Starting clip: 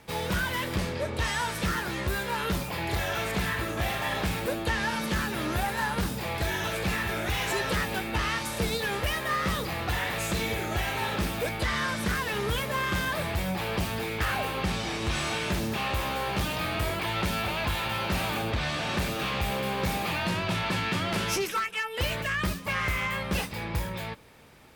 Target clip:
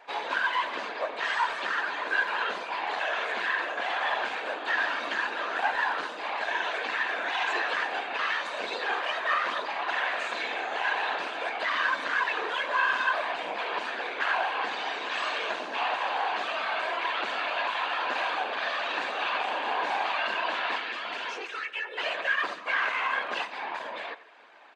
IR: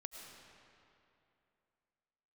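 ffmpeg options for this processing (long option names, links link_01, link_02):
-filter_complex "[0:a]aecho=1:1:5:0.67,asettb=1/sr,asplit=3[link_01][link_02][link_03];[link_01]atrim=end=20.784[link_04];[link_02]atrim=start=20.78:end=21.98,asetpts=PTS-STARTPTS,afade=type=in:duration=0.004:curve=qsin,afade=type=out:start_time=1.196:duration=0.004:curve=qsin,acrossover=split=650|2300[link_05][link_06][link_07];[link_05]acompressor=threshold=-34dB:ratio=4[link_08];[link_06]acompressor=threshold=-41dB:ratio=4[link_09];[link_07]acompressor=threshold=-35dB:ratio=4[link_10];[link_08][link_09][link_10]amix=inputs=3:normalize=0[link_11];[link_03]atrim=start=21.976[link_12];[link_04][link_11]acrossfade=duration=0.004:curve1=hsin:curve2=qsin[link_13];[link_13][link_12]acrossfade=duration=0.004:curve1=qsin:curve2=hsin,afftfilt=real='hypot(re,im)*cos(2*PI*random(0))':imag='hypot(re,im)*sin(2*PI*random(1))':win_size=512:overlap=0.75,acrossover=split=2700[link_14][link_15];[link_14]aeval=exprs='clip(val(0),-1,0.0133)':channel_layout=same[link_16];[link_16][link_15]amix=inputs=2:normalize=0,highpass=frequency=360:width=0.5412,highpass=frequency=360:width=1.3066,equalizer=frequency=390:width_type=q:width=4:gain=-4,equalizer=frequency=700:width_type=q:width=4:gain=6,equalizer=frequency=1000:width_type=q:width=4:gain=9,equalizer=frequency=1600:width_type=q:width=4:gain=9,equalizer=frequency=2700:width_type=q:width=4:gain=4,equalizer=frequency=5400:width_type=q:width=4:gain=-9,lowpass=frequency=5600:width=0.5412,lowpass=frequency=5600:width=1.3066,asplit=2[link_17][link_18];[link_18]adelay=90,highpass=300,lowpass=3400,asoftclip=type=hard:threshold=-24.5dB,volume=-16dB[link_19];[link_17][link_19]amix=inputs=2:normalize=0,volume=2.5dB"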